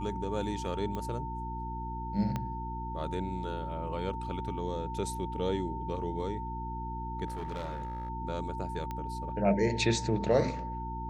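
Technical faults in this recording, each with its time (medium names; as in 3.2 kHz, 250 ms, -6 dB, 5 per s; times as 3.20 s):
hum 60 Hz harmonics 6 -39 dBFS
whine 900 Hz -38 dBFS
0.95 s: pop -24 dBFS
2.36 s: pop -20 dBFS
7.26–8.10 s: clipped -33 dBFS
8.91 s: pop -24 dBFS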